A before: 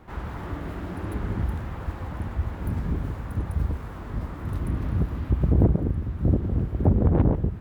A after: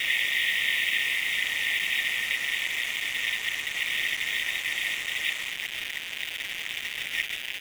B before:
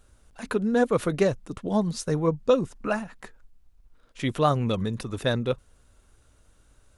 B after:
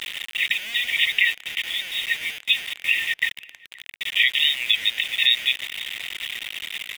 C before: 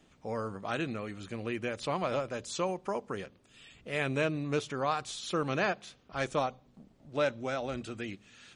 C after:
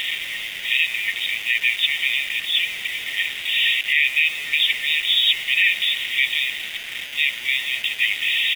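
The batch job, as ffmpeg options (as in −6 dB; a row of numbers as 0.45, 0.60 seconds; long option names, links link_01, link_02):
-filter_complex "[0:a]aeval=exprs='val(0)+0.5*0.02*sgn(val(0))':channel_layout=same,afftfilt=real='re*between(b*sr/4096,1800,3800)':imag='im*between(b*sr/4096,1800,3800)':win_size=4096:overlap=0.75,acrusher=bits=8:mix=0:aa=0.5,asplit=2[link_01][link_02];[link_02]adelay=524.8,volume=-23dB,highshelf=frequency=4000:gain=-11.8[link_03];[link_01][link_03]amix=inputs=2:normalize=0,alimiter=level_in=28dB:limit=-1dB:release=50:level=0:latency=1,volume=-5.5dB"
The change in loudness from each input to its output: +0.5, +4.5, +15.0 LU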